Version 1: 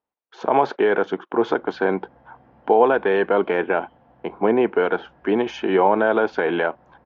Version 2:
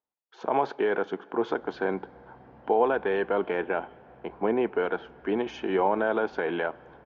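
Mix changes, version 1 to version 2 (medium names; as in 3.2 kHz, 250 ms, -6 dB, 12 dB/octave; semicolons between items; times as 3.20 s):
speech -8.0 dB; reverb: on, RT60 2.9 s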